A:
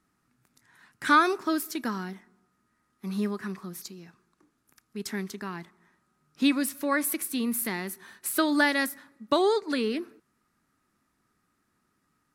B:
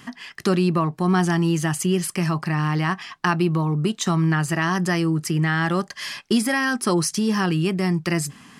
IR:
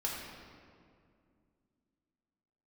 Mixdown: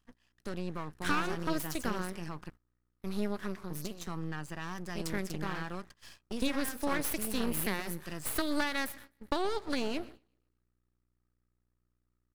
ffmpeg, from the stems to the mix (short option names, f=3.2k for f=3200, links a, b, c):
-filter_complex "[0:a]acompressor=threshold=-25dB:ratio=6,aeval=exprs='val(0)+0.00126*(sin(2*PI*60*n/s)+sin(2*PI*2*60*n/s)/2+sin(2*PI*3*60*n/s)/3+sin(2*PI*4*60*n/s)/4+sin(2*PI*5*60*n/s)/5)':c=same,volume=0dB,asplit=2[a][b];[b]volume=-20dB[c];[1:a]bandreject=f=2.1k:w=5.7,volume=-15.5dB,asplit=3[d][e][f];[d]atrim=end=2.5,asetpts=PTS-STARTPTS,afade=t=out:st=2.496:d=0.004:c=hsin[g];[e]atrim=start=2.5:end=3.7,asetpts=PTS-STARTPTS,volume=0[h];[f]atrim=start=3.7,asetpts=PTS-STARTPTS,afade=t=in:d=0.004:c=hsin[i];[g][h][i]concat=n=3:v=0:a=1[j];[c]aecho=0:1:126|252|378|504|630|756|882:1|0.47|0.221|0.104|0.0488|0.0229|0.0108[k];[a][j][k]amix=inputs=3:normalize=0,agate=range=-15dB:threshold=-47dB:ratio=16:detection=peak,aeval=exprs='max(val(0),0)':c=same"